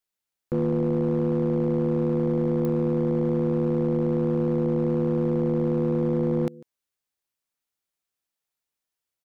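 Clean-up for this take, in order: clip repair -18.5 dBFS; de-click; inverse comb 147 ms -22 dB

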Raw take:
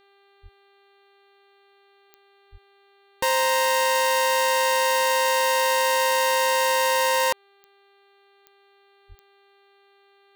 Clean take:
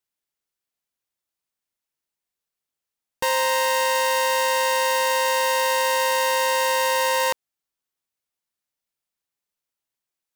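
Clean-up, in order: de-click; de-hum 397.3 Hz, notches 11; de-plosive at 0.42/2.51/9.08 s

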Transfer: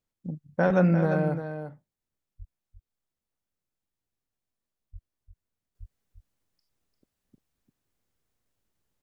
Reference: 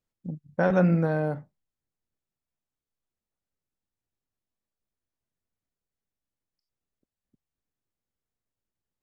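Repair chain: 2.38–2.50 s: high-pass 140 Hz 24 dB/octave; 4.92–5.04 s: high-pass 140 Hz 24 dB/octave; 5.79–5.91 s: high-pass 140 Hz 24 dB/octave; inverse comb 347 ms -9 dB; trim 0 dB, from 5.75 s -8.5 dB

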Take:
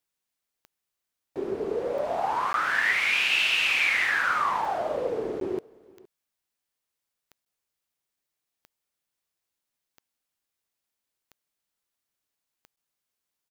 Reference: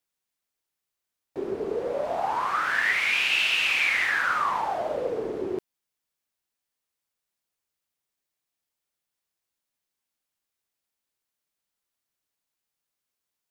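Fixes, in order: de-click; interpolate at 2.53/5.40/7.45/12.76 s, 12 ms; inverse comb 466 ms -23.5 dB

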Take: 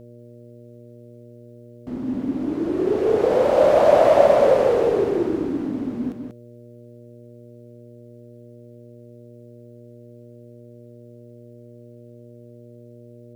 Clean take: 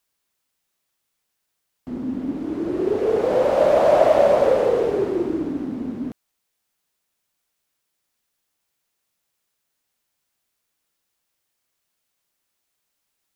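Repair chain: de-hum 119.4 Hz, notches 5; inverse comb 190 ms -5.5 dB

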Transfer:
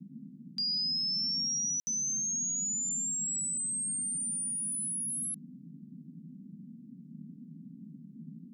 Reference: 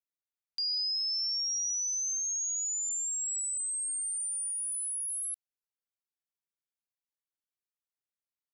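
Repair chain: room tone fill 1.80–1.87 s; noise print and reduce 30 dB

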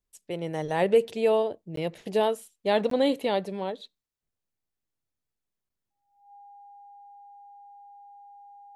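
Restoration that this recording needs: band-stop 810 Hz, Q 30; interpolate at 1.76/2.90/5.69 s, 13 ms

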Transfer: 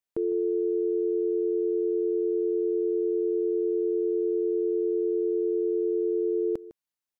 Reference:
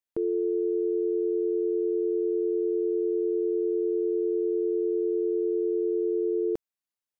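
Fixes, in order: inverse comb 155 ms -17 dB

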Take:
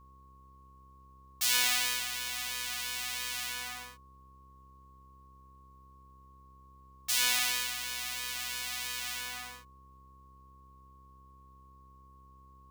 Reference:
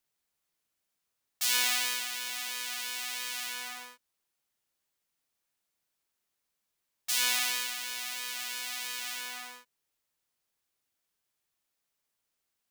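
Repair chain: de-hum 65.8 Hz, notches 8; band-stop 1.1 kHz, Q 30

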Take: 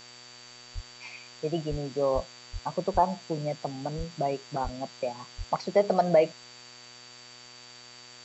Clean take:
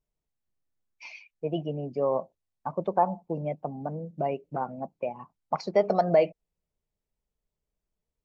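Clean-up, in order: de-hum 122.2 Hz, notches 33; band-stop 4.6 kHz, Q 30; de-plosive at 0.74/1.70/2.14/2.52/2.93/3.97/4.63/5.37 s; noise print and reduce 30 dB

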